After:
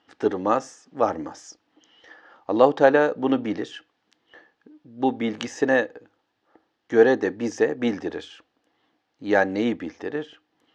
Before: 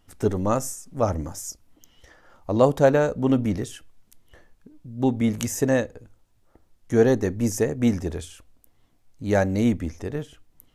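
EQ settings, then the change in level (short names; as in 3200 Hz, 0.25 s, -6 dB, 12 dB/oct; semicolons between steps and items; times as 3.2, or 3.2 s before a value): speaker cabinet 230–4600 Hz, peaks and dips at 310 Hz +8 dB, 470 Hz +6 dB, 810 Hz +9 dB, 1200 Hz +5 dB, 1700 Hz +9 dB, 3000 Hz +4 dB; high shelf 3100 Hz +8.5 dB; -3.5 dB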